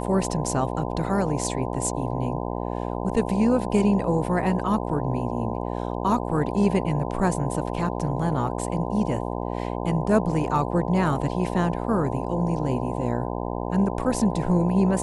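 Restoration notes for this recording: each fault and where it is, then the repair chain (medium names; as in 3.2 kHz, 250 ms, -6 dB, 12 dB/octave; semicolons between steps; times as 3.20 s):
buzz 60 Hz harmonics 17 -29 dBFS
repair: de-hum 60 Hz, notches 17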